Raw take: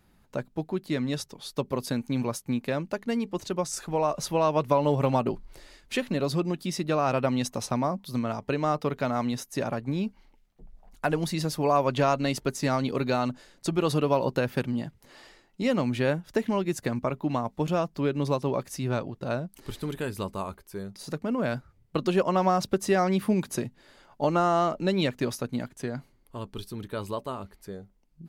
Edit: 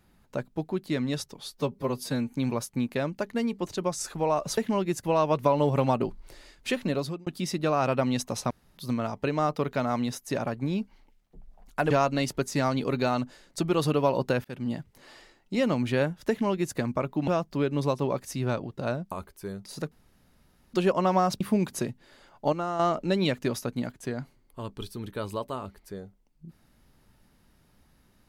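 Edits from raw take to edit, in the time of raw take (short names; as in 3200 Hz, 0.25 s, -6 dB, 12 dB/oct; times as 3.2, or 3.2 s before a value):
1.5–2.05 stretch 1.5×
6.18–6.52 fade out linear
7.76–8.03 room tone
11.16–11.98 cut
14.52–14.78 fade in
16.37–16.84 copy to 4.3
17.35–17.71 cut
19.55–20.42 cut
21.22–22.04 room tone
22.71–23.17 cut
24.29–24.56 gain -7.5 dB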